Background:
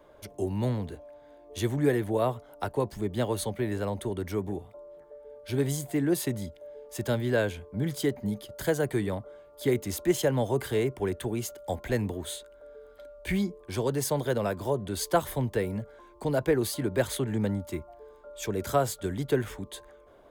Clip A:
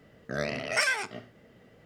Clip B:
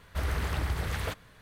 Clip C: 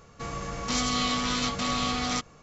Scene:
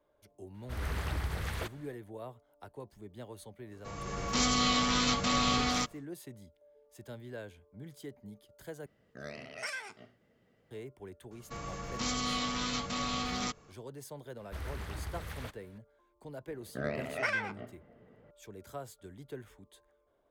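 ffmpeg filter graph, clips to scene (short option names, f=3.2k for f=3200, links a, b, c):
-filter_complex "[2:a]asplit=2[a][b];[3:a]asplit=2[c][d];[1:a]asplit=2[e][f];[0:a]volume=-18dB[g];[a]dynaudnorm=f=160:g=3:m=8dB[h];[c]dynaudnorm=f=120:g=7:m=11.5dB[i];[f]adynamicsmooth=sensitivity=0.5:basefreq=2.1k[j];[g]asplit=2[k][l];[k]atrim=end=8.864[m];[e]atrim=end=1.85,asetpts=PTS-STARTPTS,volume=-13dB[n];[l]atrim=start=10.706[o];[h]atrim=end=1.41,asetpts=PTS-STARTPTS,volume=-12dB,afade=t=in:d=0.004:c=hsin,afade=t=out:st=1.406:d=0.004:c=hsin,adelay=540[p];[i]atrim=end=2.42,asetpts=PTS-STARTPTS,volume=-11.5dB,afade=t=in:d=0.1,afade=t=out:st=2.32:d=0.1,adelay=160965S[q];[d]atrim=end=2.42,asetpts=PTS-STARTPTS,volume=-6.5dB,afade=t=in:d=0.004:c=hsin,afade=t=out:st=2.416:d=0.004:c=hsin,adelay=11310[r];[b]atrim=end=1.41,asetpts=PTS-STARTPTS,volume=-10dB,afade=t=in:d=0.004:c=hsin,afade=t=out:st=1.406:d=0.004:c=hsin,adelay=14370[s];[j]atrim=end=1.85,asetpts=PTS-STARTPTS,volume=-3dB,afade=t=in:d=0.004:c=hsin,afade=t=out:st=1.846:d=0.004:c=hsin,adelay=16460[t];[m][n]acrossfade=d=0.004:c1=hsin:c2=hsin[u];[u][o]acrossfade=d=0.004:c1=hsin:c2=hsin[v];[v][p][q][r][s][t]amix=inputs=6:normalize=0"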